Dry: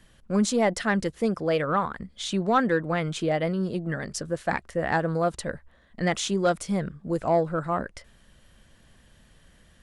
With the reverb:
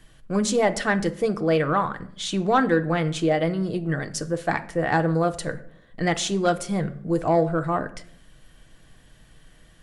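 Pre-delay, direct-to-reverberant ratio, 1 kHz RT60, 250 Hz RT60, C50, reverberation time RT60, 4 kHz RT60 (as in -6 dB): 3 ms, 7.5 dB, 0.55 s, 0.95 s, 16.5 dB, 0.70 s, 0.40 s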